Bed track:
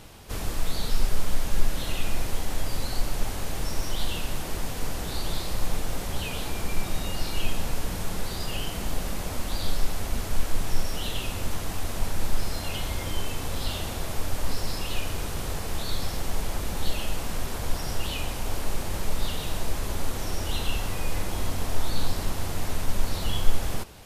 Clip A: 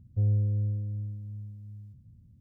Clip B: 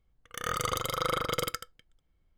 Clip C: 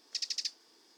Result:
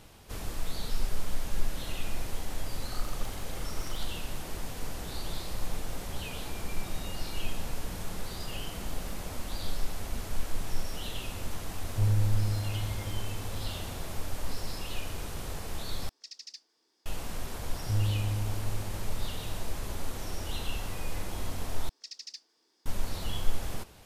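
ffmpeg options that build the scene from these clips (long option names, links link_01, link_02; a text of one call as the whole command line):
ffmpeg -i bed.wav -i cue0.wav -i cue1.wav -i cue2.wav -filter_complex "[2:a]asplit=2[link_01][link_02];[1:a]asplit=2[link_03][link_04];[3:a]asplit=2[link_05][link_06];[0:a]volume=-6.5dB[link_07];[link_01]asplit=2[link_08][link_09];[link_09]afreqshift=-0.88[link_10];[link_08][link_10]amix=inputs=2:normalize=1[link_11];[link_02]acompressor=threshold=-39dB:ratio=6:attack=3.2:release=140:knee=1:detection=peak[link_12];[link_03]aeval=exprs='val(0)+0.5*0.00668*sgn(val(0))':channel_layout=same[link_13];[link_04]aecho=1:1:6.4:0.54[link_14];[link_07]asplit=3[link_15][link_16][link_17];[link_15]atrim=end=16.094[link_18];[link_05]atrim=end=0.97,asetpts=PTS-STARTPTS,volume=-10.5dB[link_19];[link_16]atrim=start=17.056:end=21.894[link_20];[link_06]atrim=end=0.97,asetpts=PTS-STARTPTS,volume=-8.5dB[link_21];[link_17]atrim=start=22.856[link_22];[link_11]atrim=end=2.37,asetpts=PTS-STARTPTS,volume=-15.5dB,afade=type=in:duration=0.004:curve=hsin,afade=type=out:start_time=2.366:duration=0.004:curve=hsin,adelay=2480[link_23];[link_12]atrim=end=2.37,asetpts=PTS-STARTPTS,volume=-16dB,afade=type=in:duration=0.004:curve=hsin,afade=type=out:start_time=2.366:duration=0.004:curve=hsin,adelay=7640[link_24];[link_13]atrim=end=2.4,asetpts=PTS-STARTPTS,volume=-1.5dB,afade=type=in:duration=0.004:curve=hsin,afade=type=out:start_time=2.396:duration=0.004:curve=hsin,adelay=11810[link_25];[link_14]atrim=end=2.4,asetpts=PTS-STARTPTS,volume=-2dB,afade=type=in:duration=0.004:curve=hsin,afade=type=out:start_time=2.396:duration=0.004:curve=hsin,adelay=17720[link_26];[link_18][link_19]acrossfade=duration=0.004:curve1=hsin:curve2=hsin[link_27];[link_27][link_20]acrossfade=duration=0.004:curve1=hsin:curve2=hsin[link_28];[link_28][link_21]acrossfade=duration=0.004:curve1=hsin:curve2=hsin[link_29];[link_29][link_22]acrossfade=duration=0.004:curve1=hsin:curve2=hsin[link_30];[link_30][link_23][link_24][link_25][link_26]amix=inputs=5:normalize=0" out.wav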